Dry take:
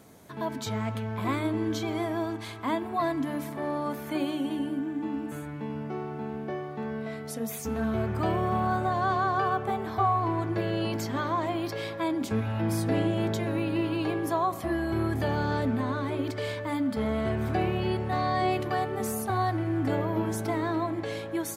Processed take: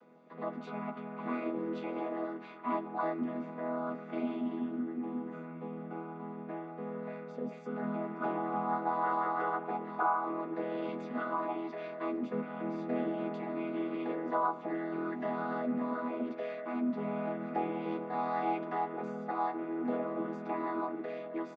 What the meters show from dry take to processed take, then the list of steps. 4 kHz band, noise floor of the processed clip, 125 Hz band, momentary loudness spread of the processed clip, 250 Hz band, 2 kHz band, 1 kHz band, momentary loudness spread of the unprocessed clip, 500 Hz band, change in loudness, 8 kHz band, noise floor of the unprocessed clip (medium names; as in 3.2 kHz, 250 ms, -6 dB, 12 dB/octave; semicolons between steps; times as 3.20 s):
under -15 dB, -46 dBFS, -17.5 dB, 9 LU, -6.5 dB, -7.5 dB, -5.0 dB, 8 LU, -5.5 dB, -6.5 dB, under -30 dB, -38 dBFS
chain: vocoder on a held chord major triad, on E3; band-pass 380–2500 Hz; doubling 13 ms -6 dB; trim -1 dB